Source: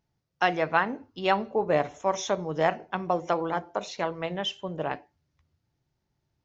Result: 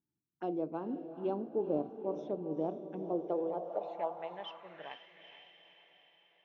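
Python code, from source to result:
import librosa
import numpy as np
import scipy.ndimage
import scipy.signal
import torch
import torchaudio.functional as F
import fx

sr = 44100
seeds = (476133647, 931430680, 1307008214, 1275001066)

y = fx.env_phaser(x, sr, low_hz=560.0, high_hz=1900.0, full_db=-23.5)
y = fx.echo_diffused(y, sr, ms=457, feedback_pct=53, wet_db=-10)
y = fx.filter_sweep_bandpass(y, sr, from_hz=310.0, to_hz=2100.0, start_s=3.04, end_s=5.24, q=2.5)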